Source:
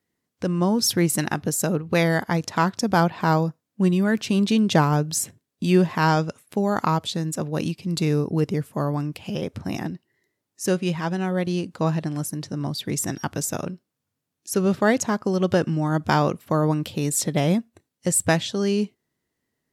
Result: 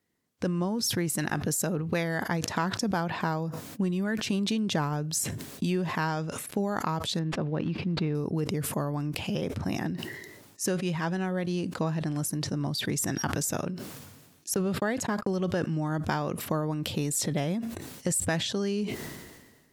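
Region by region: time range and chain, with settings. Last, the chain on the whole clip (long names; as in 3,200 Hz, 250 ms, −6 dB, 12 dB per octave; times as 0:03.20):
0:07.19–0:08.15: variable-slope delta modulation 64 kbit/s + high-frequency loss of the air 340 metres
0:14.54–0:15.33: noise gate −34 dBFS, range −49 dB + parametric band 6,000 Hz −9.5 dB 0.22 octaves
whole clip: downward compressor 6 to 1, threshold −26 dBFS; dynamic equaliser 1,700 Hz, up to +4 dB, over −51 dBFS, Q 5.7; level that may fall only so fast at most 42 dB per second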